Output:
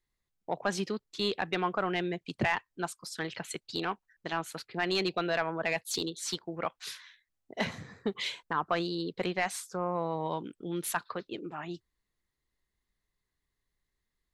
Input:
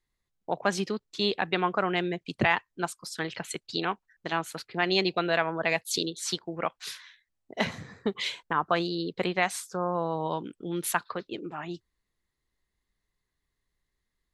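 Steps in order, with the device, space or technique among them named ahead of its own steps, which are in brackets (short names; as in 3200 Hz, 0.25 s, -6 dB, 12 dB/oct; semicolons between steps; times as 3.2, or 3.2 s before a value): saturation between pre-emphasis and de-emphasis (high shelf 4300 Hz +11 dB; soft clip -14.5 dBFS, distortion -16 dB; high shelf 4300 Hz -11 dB); gain -2.5 dB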